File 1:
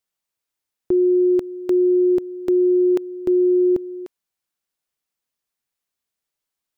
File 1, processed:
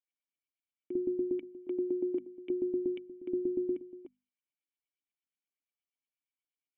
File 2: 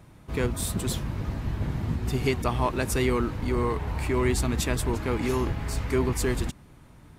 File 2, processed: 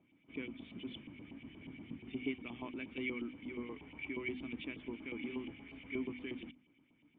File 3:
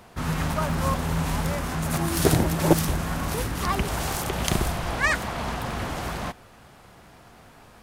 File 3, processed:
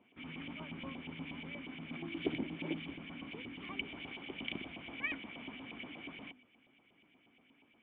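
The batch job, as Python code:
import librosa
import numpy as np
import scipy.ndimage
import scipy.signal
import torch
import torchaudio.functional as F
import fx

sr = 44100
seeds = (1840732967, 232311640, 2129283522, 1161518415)

y = fx.filter_lfo_bandpass(x, sr, shape='saw_up', hz=8.4, low_hz=840.0, high_hz=2800.0, q=1.7)
y = fx.formant_cascade(y, sr, vowel='i')
y = fx.hum_notches(y, sr, base_hz=50, count=5)
y = y * librosa.db_to_amplitude(10.0)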